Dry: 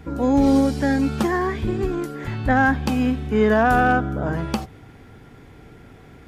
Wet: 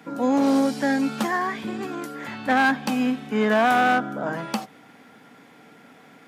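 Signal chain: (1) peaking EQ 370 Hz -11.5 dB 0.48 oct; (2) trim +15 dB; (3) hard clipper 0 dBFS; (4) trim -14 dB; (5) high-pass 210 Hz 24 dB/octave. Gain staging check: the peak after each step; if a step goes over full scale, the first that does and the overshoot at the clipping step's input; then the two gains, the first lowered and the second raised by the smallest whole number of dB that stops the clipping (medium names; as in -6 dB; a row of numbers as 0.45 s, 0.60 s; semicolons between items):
-8.0 dBFS, +7.0 dBFS, 0.0 dBFS, -14.0 dBFS, -8.5 dBFS; step 2, 7.0 dB; step 2 +8 dB, step 4 -7 dB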